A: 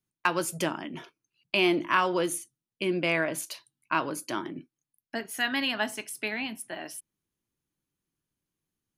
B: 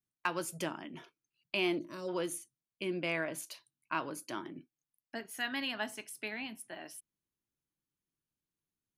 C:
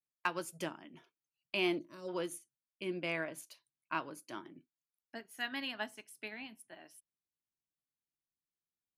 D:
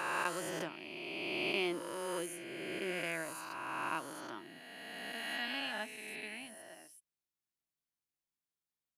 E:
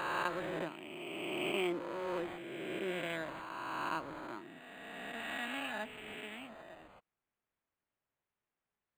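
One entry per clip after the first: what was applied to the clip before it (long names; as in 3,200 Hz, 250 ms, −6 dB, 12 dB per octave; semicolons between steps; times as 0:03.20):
gain on a spectral selection 0:01.78–0:02.08, 650–3,600 Hz −19 dB; level −8 dB
expander for the loud parts 1.5 to 1, over −52 dBFS
peak hold with a rise ahead of every peak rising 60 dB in 2.84 s; level −4.5 dB
linearly interpolated sample-rate reduction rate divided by 8×; level +1.5 dB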